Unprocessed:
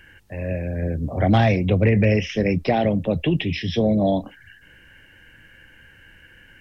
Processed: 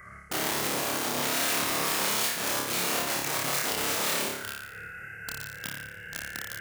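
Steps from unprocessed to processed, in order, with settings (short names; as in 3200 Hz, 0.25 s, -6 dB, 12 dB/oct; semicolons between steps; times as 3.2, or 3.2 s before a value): gliding pitch shift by -6 st ending unshifted; reverse; compressor 4:1, threshold -36 dBFS, peak gain reduction 19 dB; reverse; tone controls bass +10 dB, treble -10 dB; fixed phaser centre 1000 Hz, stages 6; wrapped overs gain 36 dB; HPF 170 Hz 12 dB/oct; high shelf 4600 Hz +10 dB; on a send: flutter echo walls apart 4.9 m, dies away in 0.81 s; on the sum: gain +6 dB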